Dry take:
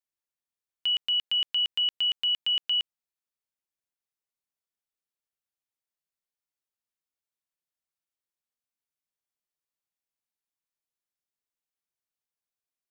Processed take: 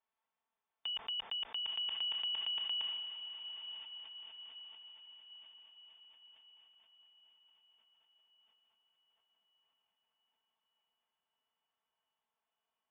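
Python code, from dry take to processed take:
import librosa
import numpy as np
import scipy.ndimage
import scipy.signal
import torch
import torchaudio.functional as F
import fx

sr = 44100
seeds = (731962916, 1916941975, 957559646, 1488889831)

y = scipy.signal.sosfilt(scipy.signal.butter(2, 56.0, 'highpass', fs=sr, output='sos'), x)
y = fx.peak_eq(y, sr, hz=910.0, db=14.0, octaves=1.2)
y = y + 0.56 * np.pad(y, (int(4.5 * sr / 1000.0), 0))[:len(y)]
y = fx.over_compress(y, sr, threshold_db=-30.0, ratio=-1.0)
y = fx.brickwall_lowpass(y, sr, high_hz=3600.0)
y = fx.echo_diffused(y, sr, ms=948, feedback_pct=52, wet_db=-9.0)
y = fx.sustainer(y, sr, db_per_s=28.0)
y = F.gain(torch.from_numpy(y), -8.5).numpy()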